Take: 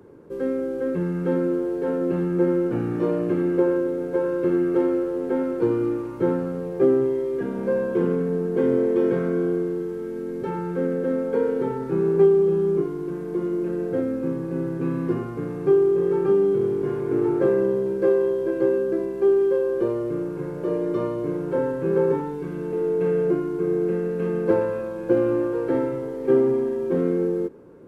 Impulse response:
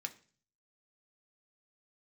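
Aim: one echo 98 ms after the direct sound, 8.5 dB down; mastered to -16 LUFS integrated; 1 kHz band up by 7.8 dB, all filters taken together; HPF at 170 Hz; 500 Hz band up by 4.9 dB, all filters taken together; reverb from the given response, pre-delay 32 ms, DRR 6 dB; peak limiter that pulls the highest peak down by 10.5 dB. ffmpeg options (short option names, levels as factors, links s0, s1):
-filter_complex "[0:a]highpass=170,equalizer=f=500:t=o:g=5,equalizer=f=1000:t=o:g=8,alimiter=limit=0.224:level=0:latency=1,aecho=1:1:98:0.376,asplit=2[s0][s1];[1:a]atrim=start_sample=2205,adelay=32[s2];[s1][s2]afir=irnorm=-1:irlink=0,volume=0.596[s3];[s0][s3]amix=inputs=2:normalize=0,volume=2"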